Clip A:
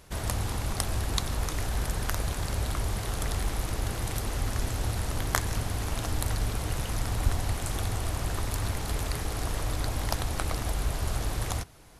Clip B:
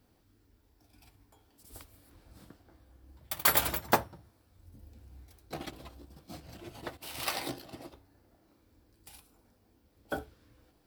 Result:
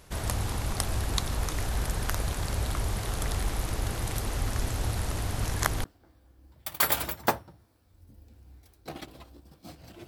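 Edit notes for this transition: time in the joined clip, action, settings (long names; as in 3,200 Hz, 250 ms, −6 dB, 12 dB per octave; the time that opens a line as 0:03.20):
clip A
0:05.17–0:05.84: reverse
0:05.84: continue with clip B from 0:02.49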